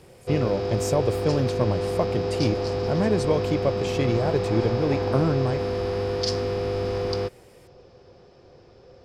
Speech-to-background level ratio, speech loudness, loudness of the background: 0.5 dB, -26.5 LUFS, -27.0 LUFS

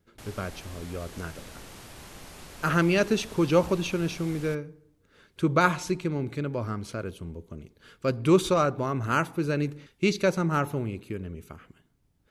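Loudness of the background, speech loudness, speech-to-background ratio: -45.5 LUFS, -27.0 LUFS, 18.5 dB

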